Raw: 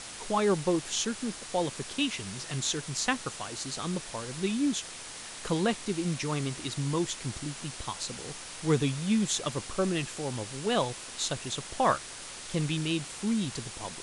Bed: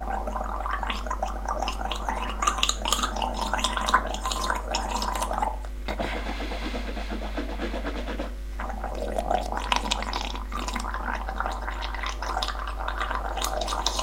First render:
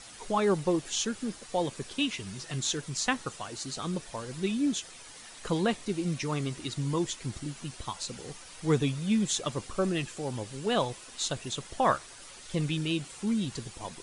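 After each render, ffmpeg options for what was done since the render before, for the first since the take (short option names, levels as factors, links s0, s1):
-af "afftdn=nr=9:nf=-43"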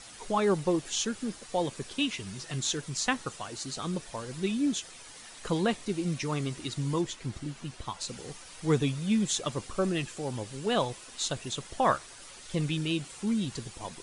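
-filter_complex "[0:a]asettb=1/sr,asplit=3[s0][s1][s2];[s0]atrim=end=7.014[s3];[s1]atrim=start=7.01:end=8.01,asetpts=PTS-STARTPTS,afade=t=in:d=0.004:c=qsin,afade=t=out:st=0.996:d=0.004:c=qsin,highshelf=f=5200:g=-7.5[s4];[s2]atrim=start=8.006[s5];[s3][s4]acrossfade=d=0.004:c1=hsin:c2=qsin[s6];[s6][s5]acrossfade=d=0.004:c1=qsin:c2=hsin"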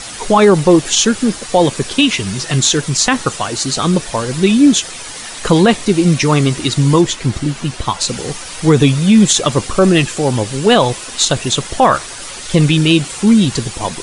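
-af "acontrast=82,alimiter=level_in=4.22:limit=0.891:release=50:level=0:latency=1"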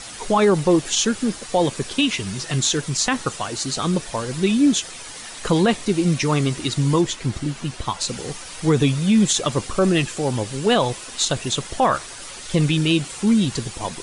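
-af "volume=0.422"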